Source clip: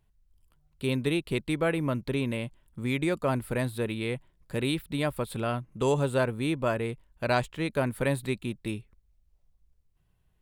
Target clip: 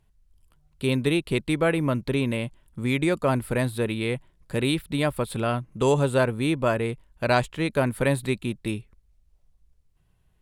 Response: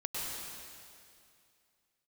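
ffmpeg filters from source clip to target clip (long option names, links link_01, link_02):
-filter_complex "[1:a]atrim=start_sample=2205,atrim=end_sample=3087,asetrate=23373,aresample=44100[link_01];[0:a][link_01]afir=irnorm=-1:irlink=0,volume=4dB"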